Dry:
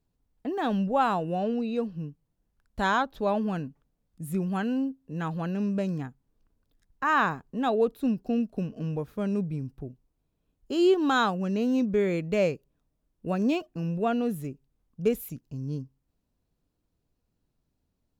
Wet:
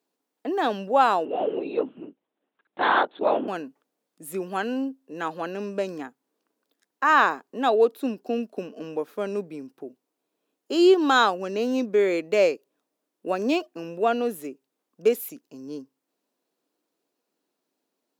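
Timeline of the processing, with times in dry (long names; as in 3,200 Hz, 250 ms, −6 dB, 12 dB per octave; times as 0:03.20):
0:01.25–0:03.48: linear-prediction vocoder at 8 kHz whisper
whole clip: high-pass filter 300 Hz 24 dB per octave; dynamic equaliser 4,800 Hz, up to +5 dB, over −56 dBFS, Q 3.6; level +5.5 dB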